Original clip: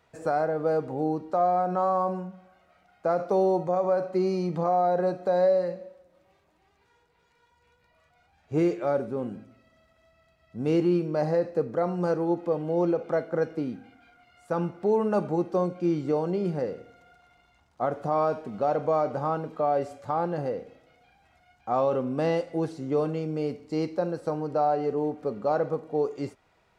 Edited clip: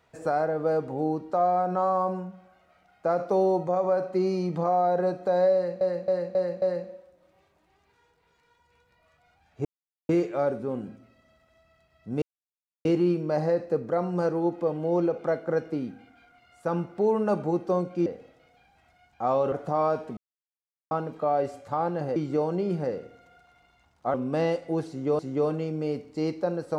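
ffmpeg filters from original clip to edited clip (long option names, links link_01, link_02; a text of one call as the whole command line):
ffmpeg -i in.wav -filter_complex "[0:a]asplit=14[link_01][link_02][link_03][link_04][link_05][link_06][link_07][link_08][link_09][link_10][link_11][link_12][link_13][link_14];[link_01]atrim=end=5.812[link_15];[link_02]atrim=start=5.538:end=5.812[link_16];[link_03]atrim=start=5.538:end=5.812[link_17];[link_04]atrim=start=5.538:end=5.812[link_18];[link_05]atrim=start=5.538:end=8.57,asetpts=PTS-STARTPTS,afade=type=out:start_time=3.028:duration=0.004:curve=hsin,apad=pad_dur=0.44[link_19];[link_06]atrim=start=8.57:end=10.7,asetpts=PTS-STARTPTS,afade=type=in:duration=0.004:curve=hsin,afade=type=out:start_time=2.126:duration=0.004:curve=hsin,apad=pad_dur=0.63[link_20];[link_07]atrim=start=10.7:end=15.912,asetpts=PTS-STARTPTS,afade=type=in:duration=0.004:curve=hsin[link_21];[link_08]atrim=start=20.528:end=21.992[link_22];[link_09]atrim=start=17.888:end=18.54,asetpts=PTS-STARTPTS,afade=type=out:start_time=0.648:duration=0.004:curve=hsin[link_23];[link_10]atrim=start=18.54:end=19.28,asetpts=PTS-STARTPTS,volume=0[link_24];[link_11]atrim=start=19.28:end=20.532,asetpts=PTS-STARTPTS,afade=type=in:duration=0.004:curve=hsin[link_25];[link_12]atrim=start=15.908:end=17.892[link_26];[link_13]atrim=start=21.988:end=23.042[link_27];[link_14]atrim=start=22.738[link_28];[link_15][link_16]acrossfade=duration=0.004:curve1=hsin:curve2=hsin[link_29];[link_29][link_17]acrossfade=duration=0.004:curve1=hsin:curve2=hsin[link_30];[link_30][link_18]acrossfade=duration=0.004:curve1=hsin:curve2=hsin[link_31];[link_19][link_20][link_21]concat=n=3:v=0:a=1[link_32];[link_31][link_32]acrossfade=duration=0.004:curve1=hsin:curve2=hsin[link_33];[link_33][link_22]acrossfade=duration=0.004:curve1=hsin:curve2=hsin[link_34];[link_23][link_24][link_25]concat=n=3:v=0:a=1[link_35];[link_34][link_35]acrossfade=duration=0.004:curve1=hsin:curve2=hsin[link_36];[link_36][link_26]acrossfade=duration=0.004:curve1=hsin:curve2=hsin[link_37];[link_37][link_27]acrossfade=duration=0.004:curve1=hsin:curve2=hsin[link_38];[link_38][link_28]acrossfade=duration=0.004:curve1=hsin:curve2=hsin" out.wav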